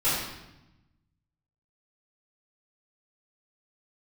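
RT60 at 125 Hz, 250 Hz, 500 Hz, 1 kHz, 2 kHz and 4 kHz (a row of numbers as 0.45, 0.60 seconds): 1.7, 1.4, 0.95, 0.90, 0.85, 0.80 seconds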